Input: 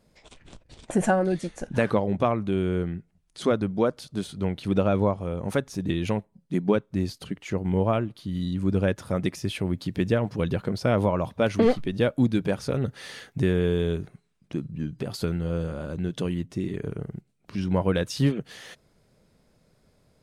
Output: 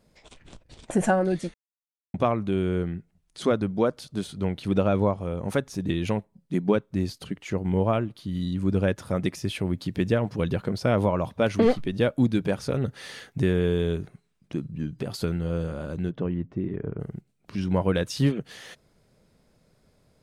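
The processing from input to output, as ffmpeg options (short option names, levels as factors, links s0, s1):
-filter_complex "[0:a]asplit=3[s0][s1][s2];[s0]afade=t=out:st=16.09:d=0.02[s3];[s1]lowpass=1500,afade=t=in:st=16.09:d=0.02,afade=t=out:st=16.99:d=0.02[s4];[s2]afade=t=in:st=16.99:d=0.02[s5];[s3][s4][s5]amix=inputs=3:normalize=0,asplit=3[s6][s7][s8];[s6]atrim=end=1.54,asetpts=PTS-STARTPTS,afade=t=out:st=1.536:d=0.004:c=hsin[s9];[s7]atrim=start=1.54:end=2.14,asetpts=PTS-STARTPTS,volume=0[s10];[s8]atrim=start=2.14,asetpts=PTS-STARTPTS,afade=t=in:d=0.004:c=hsin[s11];[s9][s10][s11]concat=n=3:v=0:a=1"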